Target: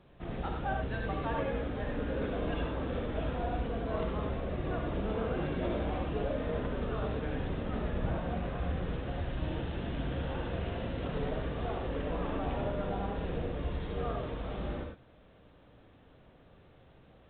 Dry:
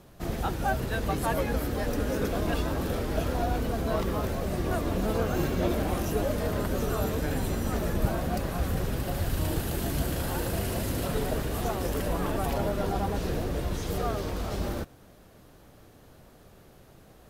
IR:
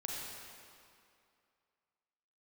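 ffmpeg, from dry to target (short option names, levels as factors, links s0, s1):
-filter_complex "[1:a]atrim=start_sample=2205,atrim=end_sample=3528,asetrate=29988,aresample=44100[s0];[0:a][s0]afir=irnorm=-1:irlink=0,volume=0.501" -ar 8000 -c:a pcm_alaw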